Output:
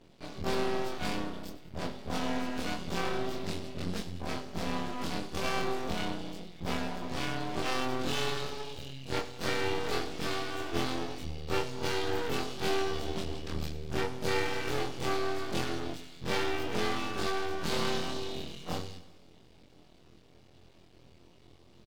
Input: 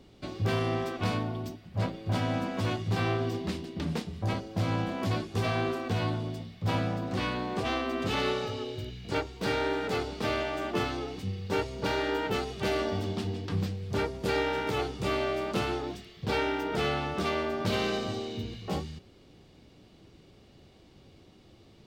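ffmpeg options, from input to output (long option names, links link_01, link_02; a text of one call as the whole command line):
ffmpeg -i in.wav -filter_complex "[0:a]afftfilt=real='re':imag='-im':win_size=2048:overlap=0.75,acontrast=33,aeval=exprs='max(val(0),0)':channel_layout=same,asplit=2[link_01][link_02];[link_02]aecho=0:1:98|196|294|392|490:0.168|0.094|0.0526|0.0295|0.0165[link_03];[link_01][link_03]amix=inputs=2:normalize=0,adynamicequalizer=threshold=0.00355:dfrequency=2800:dqfactor=0.7:tfrequency=2800:tqfactor=0.7:attack=5:release=100:ratio=0.375:range=2:mode=boostabove:tftype=highshelf" out.wav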